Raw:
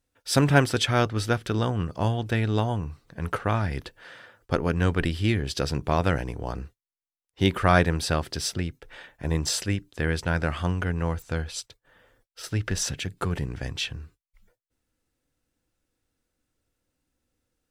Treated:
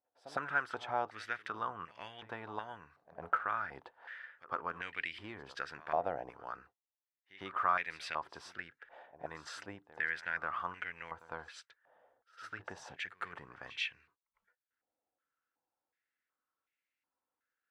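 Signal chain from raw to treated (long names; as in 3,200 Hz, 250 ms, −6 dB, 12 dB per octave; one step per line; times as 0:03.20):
downward compressor 2.5 to 1, threshold −24 dBFS, peak gain reduction 8 dB
echo ahead of the sound 106 ms −17 dB
band-pass on a step sequencer 2.7 Hz 720–2,200 Hz
level +2.5 dB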